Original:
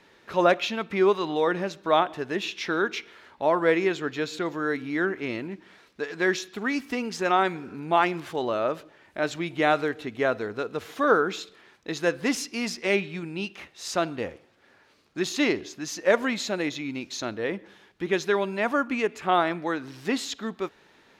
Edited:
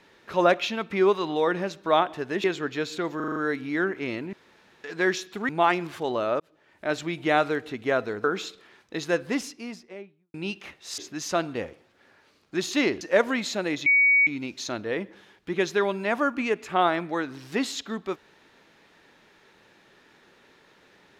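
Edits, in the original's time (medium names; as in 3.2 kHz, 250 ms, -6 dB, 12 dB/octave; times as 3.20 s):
2.44–3.85 s: delete
4.57 s: stutter 0.04 s, 6 plays
5.54–6.05 s: room tone
6.70–7.82 s: delete
8.73–9.25 s: fade in
10.57–11.18 s: delete
11.92–13.28 s: studio fade out
15.64–15.95 s: move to 13.92 s
16.80 s: add tone 2.25 kHz -15.5 dBFS 0.41 s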